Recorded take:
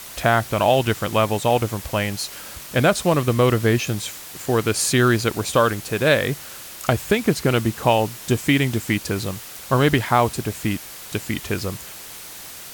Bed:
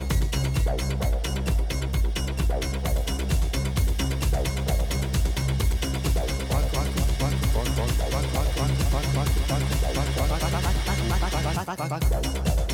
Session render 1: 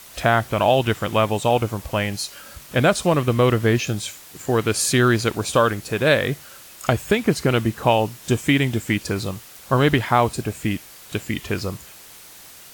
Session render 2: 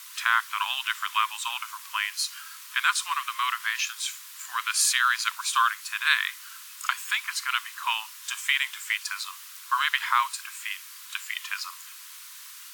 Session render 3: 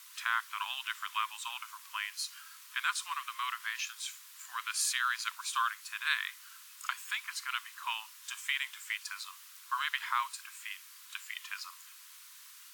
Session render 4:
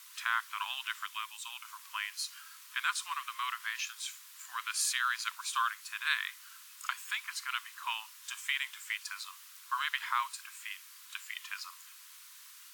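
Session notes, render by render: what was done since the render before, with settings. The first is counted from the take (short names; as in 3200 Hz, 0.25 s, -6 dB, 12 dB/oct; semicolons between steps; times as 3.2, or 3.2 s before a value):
noise print and reduce 6 dB
Chebyshev high-pass 1000 Hz, order 6
gain -9 dB
1.06–1.65 bell 930 Hz -8 dB 2.6 oct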